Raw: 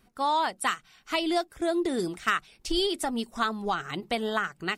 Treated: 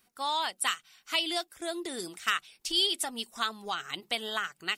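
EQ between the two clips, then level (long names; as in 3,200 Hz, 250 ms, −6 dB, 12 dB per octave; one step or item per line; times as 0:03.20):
dynamic equaliser 3,100 Hz, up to +6 dB, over −44 dBFS, Q 2.1
spectral tilt +3 dB per octave
−6.0 dB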